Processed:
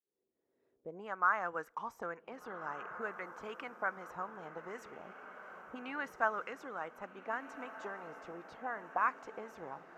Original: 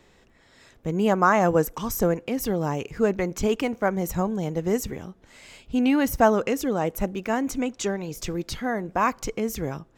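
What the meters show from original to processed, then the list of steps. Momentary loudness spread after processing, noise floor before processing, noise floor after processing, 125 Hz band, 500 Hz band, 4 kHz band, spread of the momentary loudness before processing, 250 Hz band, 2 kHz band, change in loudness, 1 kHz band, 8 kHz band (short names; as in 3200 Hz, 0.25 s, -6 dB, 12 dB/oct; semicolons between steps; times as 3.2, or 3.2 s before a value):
15 LU, -58 dBFS, -82 dBFS, -29.5 dB, -19.5 dB, -21.0 dB, 10 LU, -26.5 dB, -7.5 dB, -15.0 dB, -10.5 dB, -29.5 dB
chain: opening faded in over 1.73 s; auto-wah 390–1400 Hz, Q 3, up, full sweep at -21 dBFS; diffused feedback echo 1.601 s, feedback 54%, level -12 dB; gain -3.5 dB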